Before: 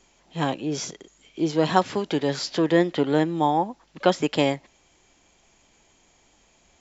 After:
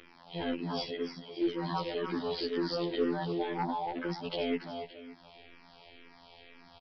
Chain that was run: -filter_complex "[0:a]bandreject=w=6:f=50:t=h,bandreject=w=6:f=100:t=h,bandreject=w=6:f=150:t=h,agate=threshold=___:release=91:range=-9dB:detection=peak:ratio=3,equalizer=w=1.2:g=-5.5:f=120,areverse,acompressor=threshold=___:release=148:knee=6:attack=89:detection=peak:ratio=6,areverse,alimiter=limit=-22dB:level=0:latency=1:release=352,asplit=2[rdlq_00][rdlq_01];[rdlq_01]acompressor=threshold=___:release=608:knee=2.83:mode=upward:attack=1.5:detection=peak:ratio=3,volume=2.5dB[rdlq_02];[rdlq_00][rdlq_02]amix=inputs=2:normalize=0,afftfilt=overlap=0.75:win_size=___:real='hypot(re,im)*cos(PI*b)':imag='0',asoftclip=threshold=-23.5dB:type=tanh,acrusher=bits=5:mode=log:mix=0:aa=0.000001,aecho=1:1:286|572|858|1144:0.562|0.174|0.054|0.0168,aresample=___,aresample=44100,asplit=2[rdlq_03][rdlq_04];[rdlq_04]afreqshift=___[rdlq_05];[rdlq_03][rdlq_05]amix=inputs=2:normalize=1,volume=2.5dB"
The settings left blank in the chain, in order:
-50dB, -34dB, -40dB, 2048, 11025, -2